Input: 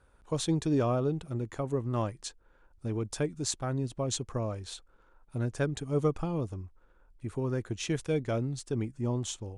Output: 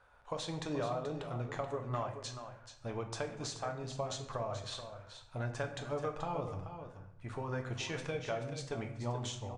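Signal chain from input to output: resonant low shelf 470 Hz -11 dB, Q 1.5; compressor, threshold -38 dBFS, peak gain reduction 12 dB; air absorption 99 m; echo 0.431 s -10 dB; reverb RT60 0.75 s, pre-delay 7 ms, DRR 4 dB; gain +3 dB

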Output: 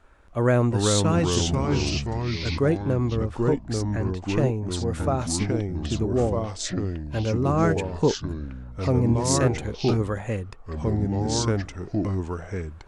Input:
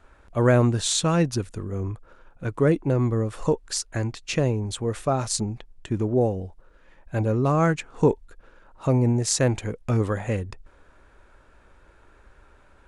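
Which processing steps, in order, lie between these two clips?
3.16–4.37 LPF 2900 Hz 6 dB/oct; echoes that change speed 0.292 s, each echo -3 st, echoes 3; gain -2 dB

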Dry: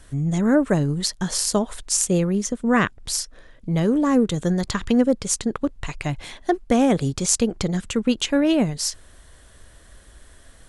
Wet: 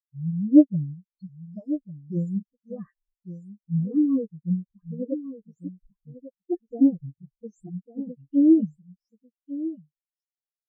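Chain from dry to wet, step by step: spectral delay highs late, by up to 0.293 s; echo 1.148 s -3.5 dB; spectral expander 4:1; gain +3 dB

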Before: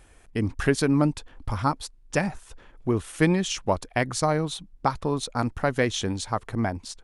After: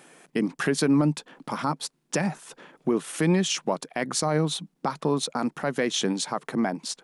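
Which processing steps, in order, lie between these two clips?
in parallel at +2 dB: compressor, threshold -31 dBFS, peak gain reduction 15 dB; on the sum: elliptic high-pass 150 Hz, stop band 40 dB; limiter -13.5 dBFS, peak gain reduction 9 dB

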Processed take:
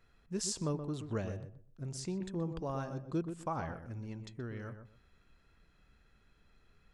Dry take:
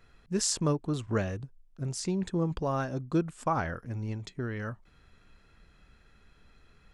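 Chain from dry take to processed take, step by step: dynamic EQ 1700 Hz, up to -4 dB, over -44 dBFS, Q 1.2; darkening echo 0.125 s, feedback 22%, low-pass 1500 Hz, level -8 dB; gain -7.5 dB

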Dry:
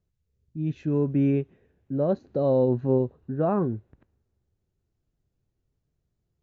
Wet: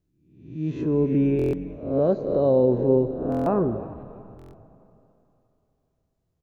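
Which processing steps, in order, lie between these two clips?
spectral swells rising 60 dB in 0.69 s; frequency-shifting echo 0.335 s, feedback 42%, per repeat -97 Hz, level -16 dB; on a send at -11.5 dB: reverb RT60 3.1 s, pre-delay 20 ms; on the sum: dynamic EQ 410 Hz, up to +5 dB, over -34 dBFS, Q 0.9; stuck buffer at 1.37/3.3/4.37, samples 1024, times 6; gain -1.5 dB

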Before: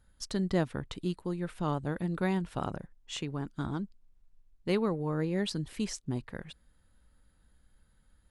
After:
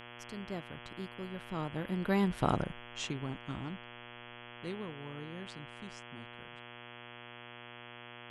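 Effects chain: Doppler pass-by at 2.54, 20 m/s, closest 5.7 m; buzz 120 Hz, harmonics 28, -55 dBFS -1 dB/oct; gain +5 dB

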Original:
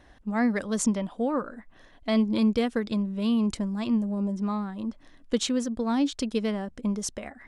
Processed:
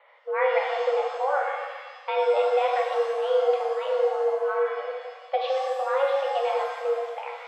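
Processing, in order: mistuned SSB +270 Hz 220–2900 Hz; shimmer reverb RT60 1.4 s, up +7 st, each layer -8 dB, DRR -0.5 dB

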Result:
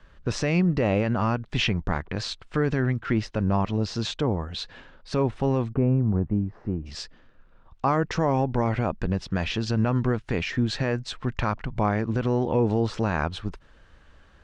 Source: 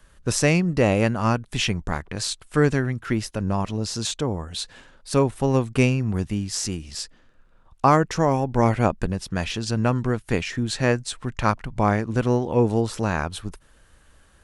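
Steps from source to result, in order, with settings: Bessel low-pass 3500 Hz, order 4, from 5.72 s 850 Hz, from 6.85 s 3900 Hz; limiter -14.5 dBFS, peak gain reduction 9.5 dB; gain +1.5 dB

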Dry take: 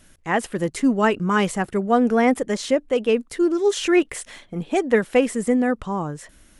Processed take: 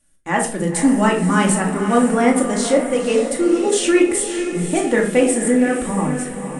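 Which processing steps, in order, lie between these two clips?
gate -45 dBFS, range -17 dB; bell 8800 Hz +15 dB 0.47 oct; on a send: diffused feedback echo 0.516 s, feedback 51%, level -9 dB; on the sum: shoebox room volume 580 m³, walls furnished, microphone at 2.4 m; gain -1 dB

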